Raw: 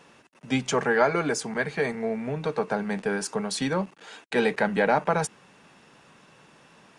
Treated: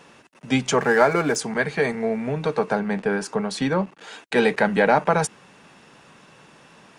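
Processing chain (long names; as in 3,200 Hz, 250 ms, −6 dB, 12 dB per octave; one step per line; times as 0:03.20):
0:00.81–0:01.36: running median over 9 samples
0:02.79–0:03.98: high-shelf EQ 4,500 Hz −10 dB
level +4.5 dB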